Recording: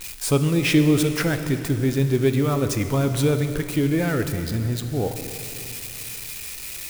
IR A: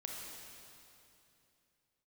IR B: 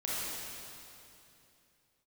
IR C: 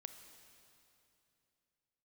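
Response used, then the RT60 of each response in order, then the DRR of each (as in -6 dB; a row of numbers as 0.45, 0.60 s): C; 2.8, 2.8, 2.8 s; -1.5, -8.0, 8.0 dB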